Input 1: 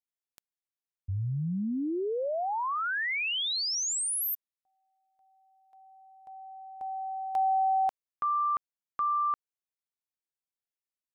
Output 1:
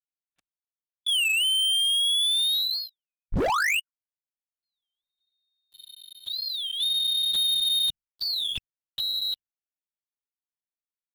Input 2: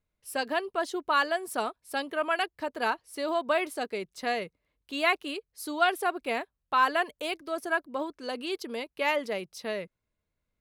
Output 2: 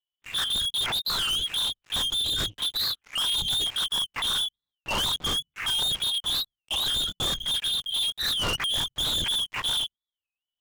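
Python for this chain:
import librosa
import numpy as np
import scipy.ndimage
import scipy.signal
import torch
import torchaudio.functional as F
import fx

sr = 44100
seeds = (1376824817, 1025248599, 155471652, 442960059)

p1 = fx.band_shuffle(x, sr, order='3412')
p2 = fx.hum_notches(p1, sr, base_hz=50, count=4)
p3 = fx.over_compress(p2, sr, threshold_db=-32.0, ratio=-0.5)
p4 = p2 + (p3 * 10.0 ** (-3.0 / 20.0))
p5 = fx.lpc_vocoder(p4, sr, seeds[0], excitation='whisper', order=10)
p6 = fx.leveller(p5, sr, passes=5)
p7 = fx.record_warp(p6, sr, rpm=33.33, depth_cents=250.0)
y = p7 * 10.0 ** (-7.5 / 20.0)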